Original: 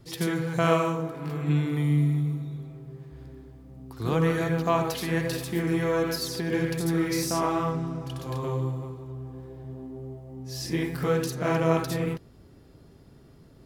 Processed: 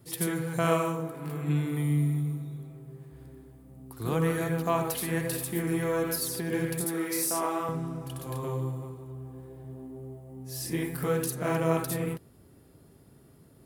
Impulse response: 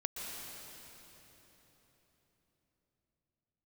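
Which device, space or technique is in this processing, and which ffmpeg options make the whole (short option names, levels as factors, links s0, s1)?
budget condenser microphone: -filter_complex "[0:a]asettb=1/sr,asplit=3[s0][s1][s2];[s0]atrim=end=6.844[s3];[s1]atrim=start=6.84:end=7.69,asetpts=PTS-STARTPTS,afade=t=in:d=0.004:c=qsin,afade=t=out:st=0.846:d=0.004:c=qsin,highpass=300[s4];[s2]atrim=start=7.686[s5];[s3][s4]acrossfade=d=0.004:c1=hsin:c2=qsin[s6];[s6][s5]acrossfade=d=0.004:c1=qsin:c2=hsin,highpass=68,highshelf=f=7400:t=q:w=1.5:g=9,volume=0.708"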